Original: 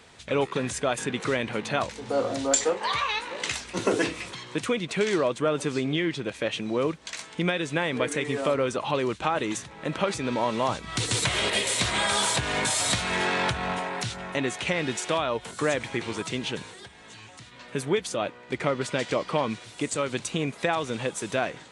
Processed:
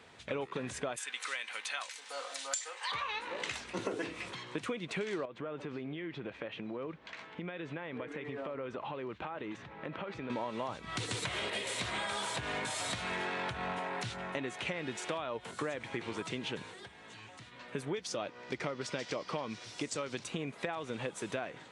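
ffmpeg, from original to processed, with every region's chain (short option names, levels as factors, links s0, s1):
-filter_complex "[0:a]asettb=1/sr,asplit=3[s0][s1][s2];[s0]atrim=end=0.964[s3];[s1]atrim=start=0.96:end=2.92,asetpts=PTS-STARTPTS,afade=t=in:d=0.004:c=qsin,afade=t=out:st=1.956:d=0.004:c=qsin,highpass=1400,aemphasis=mode=production:type=50fm,aecho=1:1:3.9:0.31,atrim=end_sample=86436[s4];[s2]atrim=start=2.916[s5];[s3][s4]acrossfade=d=0.004:c1=hsin:c2=qsin[s6];[s6][s5]acrossfade=d=0.004:c1=qsin:c2=hsin,asettb=1/sr,asplit=3[s7][s8][s9];[s7]atrim=end=5.254[s10];[s8]atrim=start=5.25:end=10.3,asetpts=PTS-STARTPTS,afade=t=in:d=0.004:c=qsin,afade=t=out:st=5.046:d=0.004:c=qsin,acompressor=threshold=0.0251:ratio=6:attack=3.2:release=140:knee=1:detection=peak,lowpass=2900[s11];[s9]atrim=start=10.296[s12];[s10][s11]acrossfade=d=0.004:c1=hsin:c2=qsin[s13];[s13][s12]acrossfade=d=0.004:c1=qsin:c2=hsin,asettb=1/sr,asplit=3[s14][s15][s16];[s14]atrim=end=17.944[s17];[s15]atrim=start=17.94:end=20.24,asetpts=PTS-STARTPTS,afade=t=in:d=0.004:c=qsin,afade=t=out:st=2.296:d=0.004:c=qsin,equalizer=f=5400:w=1.9:g=12,acompressor=mode=upward:threshold=0.0126:ratio=2.5:attack=3.2:release=140:knee=2.83:detection=peak[s18];[s16]atrim=start=20.236[s19];[s17][s18]acrossfade=d=0.004:c1=hsin:c2=qsin[s20];[s20][s19]acrossfade=d=0.004:c1=qsin:c2=hsin,highpass=65,bass=f=250:g=-2,treble=f=4000:g=-7,acompressor=threshold=0.0316:ratio=6,volume=0.668"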